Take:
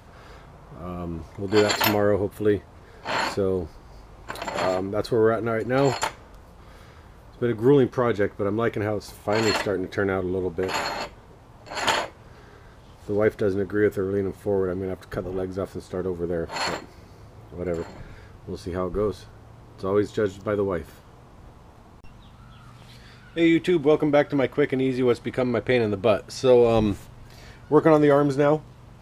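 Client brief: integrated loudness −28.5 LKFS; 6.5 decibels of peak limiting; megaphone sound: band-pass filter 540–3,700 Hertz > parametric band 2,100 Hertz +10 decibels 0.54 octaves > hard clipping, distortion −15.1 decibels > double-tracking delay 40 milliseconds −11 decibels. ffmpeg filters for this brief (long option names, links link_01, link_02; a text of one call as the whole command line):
ffmpeg -i in.wav -filter_complex "[0:a]alimiter=limit=-11.5dB:level=0:latency=1,highpass=540,lowpass=3700,equalizer=frequency=2100:width_type=o:width=0.54:gain=10,asoftclip=type=hard:threshold=-19dB,asplit=2[link_01][link_02];[link_02]adelay=40,volume=-11dB[link_03];[link_01][link_03]amix=inputs=2:normalize=0,volume=-0.5dB" out.wav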